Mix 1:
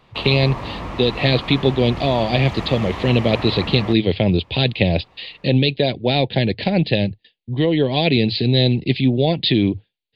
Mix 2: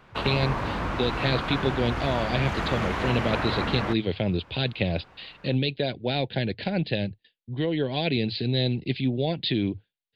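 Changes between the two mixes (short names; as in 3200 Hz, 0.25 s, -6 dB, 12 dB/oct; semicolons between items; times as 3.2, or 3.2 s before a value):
speech -9.0 dB; master: add bell 1500 Hz +12.5 dB 0.22 oct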